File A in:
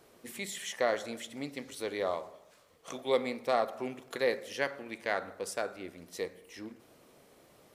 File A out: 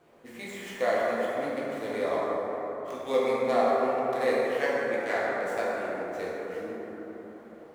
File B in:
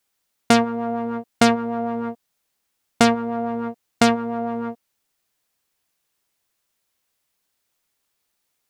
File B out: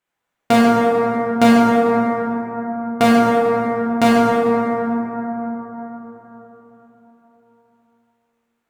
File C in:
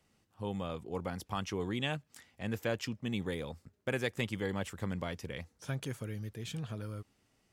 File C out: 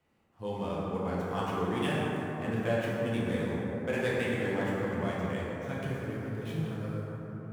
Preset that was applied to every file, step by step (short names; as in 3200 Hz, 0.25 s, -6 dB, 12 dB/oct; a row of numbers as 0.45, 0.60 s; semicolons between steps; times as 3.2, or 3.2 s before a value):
median filter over 9 samples; low shelf 79 Hz -7 dB; plate-style reverb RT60 4.5 s, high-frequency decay 0.3×, DRR -7.5 dB; gain -2 dB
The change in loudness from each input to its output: +5.5, +5.0, +5.5 LU